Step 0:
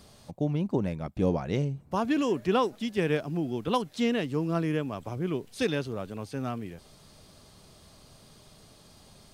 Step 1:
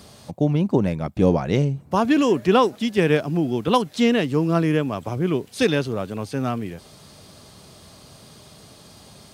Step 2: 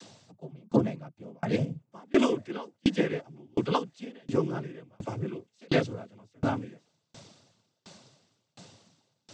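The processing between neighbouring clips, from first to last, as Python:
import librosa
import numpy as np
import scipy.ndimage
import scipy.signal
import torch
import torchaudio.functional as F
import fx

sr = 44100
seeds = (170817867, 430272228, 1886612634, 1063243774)

y1 = scipy.signal.sosfilt(scipy.signal.butter(2, 67.0, 'highpass', fs=sr, output='sos'), x)
y1 = y1 * librosa.db_to_amplitude(8.5)
y2 = fx.noise_vocoder(y1, sr, seeds[0], bands=16)
y2 = fx.tremolo_decay(y2, sr, direction='decaying', hz=1.4, depth_db=36)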